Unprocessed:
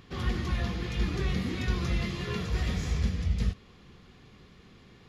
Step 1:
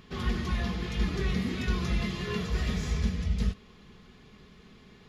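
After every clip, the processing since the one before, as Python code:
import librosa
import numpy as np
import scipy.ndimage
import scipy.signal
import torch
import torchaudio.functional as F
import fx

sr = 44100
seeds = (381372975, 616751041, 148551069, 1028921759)

y = x + 0.38 * np.pad(x, (int(4.7 * sr / 1000.0), 0))[:len(x)]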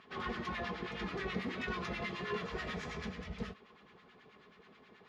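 y = fx.filter_lfo_bandpass(x, sr, shape='sine', hz=9.3, low_hz=560.0, high_hz=1800.0, q=0.94)
y = y * 10.0 ** (1.5 / 20.0)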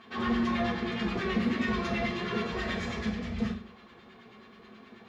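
y = fx.rev_fdn(x, sr, rt60_s=0.37, lf_ratio=1.45, hf_ratio=0.95, size_ms=26.0, drr_db=-2.0)
y = y * 10.0 ** (3.0 / 20.0)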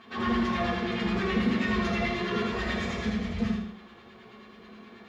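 y = fx.echo_feedback(x, sr, ms=80, feedback_pct=35, wet_db=-4.5)
y = y * 10.0 ** (1.0 / 20.0)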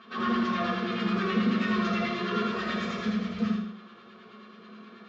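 y = fx.cabinet(x, sr, low_hz=190.0, low_slope=12, high_hz=6200.0, hz=(200.0, 290.0, 830.0, 1300.0, 2000.0), db=(6, -5, -8, 8, -5))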